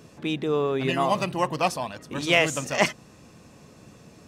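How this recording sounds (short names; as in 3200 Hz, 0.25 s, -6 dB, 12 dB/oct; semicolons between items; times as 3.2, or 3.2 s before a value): noise floor -52 dBFS; spectral tilt -4.0 dB/oct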